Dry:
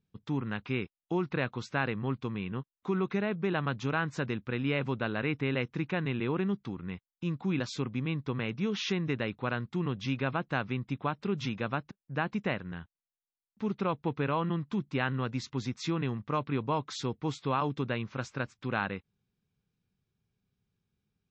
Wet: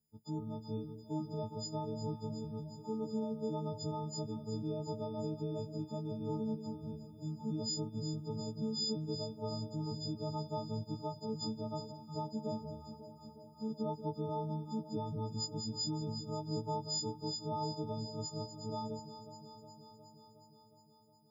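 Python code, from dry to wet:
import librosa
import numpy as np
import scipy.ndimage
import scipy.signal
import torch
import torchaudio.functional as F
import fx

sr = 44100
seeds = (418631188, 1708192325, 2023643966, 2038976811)

y = fx.freq_snap(x, sr, grid_st=6)
y = scipy.signal.sosfilt(scipy.signal.ellip(3, 1.0, 80, [880.0, 4800.0], 'bandstop', fs=sr, output='sos'), y)
y = fx.dynamic_eq(y, sr, hz=760.0, q=1.9, threshold_db=-48.0, ratio=4.0, max_db=-4)
y = fx.echo_alternate(y, sr, ms=181, hz=840.0, feedback_pct=83, wet_db=-9.0)
y = F.gain(torch.from_numpy(y), -6.5).numpy()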